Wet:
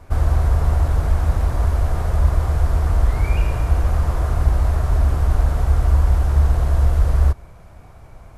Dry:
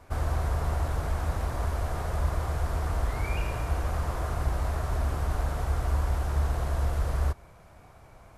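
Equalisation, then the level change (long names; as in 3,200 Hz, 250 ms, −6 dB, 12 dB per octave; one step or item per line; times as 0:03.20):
low-shelf EQ 77 Hz +7.5 dB
low-shelf EQ 460 Hz +3.5 dB
+4.0 dB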